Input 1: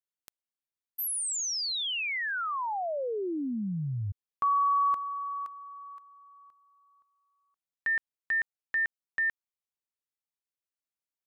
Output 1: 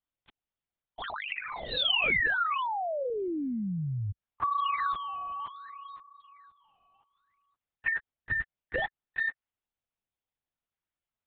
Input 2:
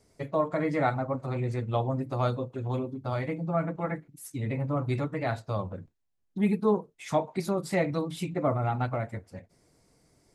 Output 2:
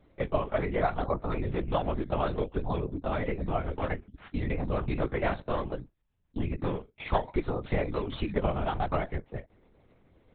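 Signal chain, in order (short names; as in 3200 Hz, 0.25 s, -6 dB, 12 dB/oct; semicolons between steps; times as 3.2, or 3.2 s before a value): in parallel at -10 dB: decimation with a swept rate 16×, swing 100% 0.62 Hz; on the sum: compressor 20:1, threshold -25 dBFS; harmonic-percussive split percussive +7 dB; LPC vocoder at 8 kHz whisper; gain -2 dB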